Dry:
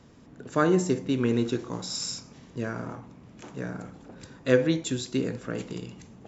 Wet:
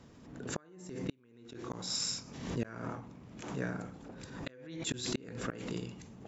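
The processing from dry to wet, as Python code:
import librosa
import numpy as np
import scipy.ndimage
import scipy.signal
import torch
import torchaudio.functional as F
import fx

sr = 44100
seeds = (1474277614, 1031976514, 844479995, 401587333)

y = fx.dynamic_eq(x, sr, hz=2000.0, q=0.91, threshold_db=-44.0, ratio=4.0, max_db=4)
y = fx.gate_flip(y, sr, shuts_db=-19.0, range_db=-38)
y = fx.pre_swell(y, sr, db_per_s=58.0)
y = y * 10.0 ** (-3.0 / 20.0)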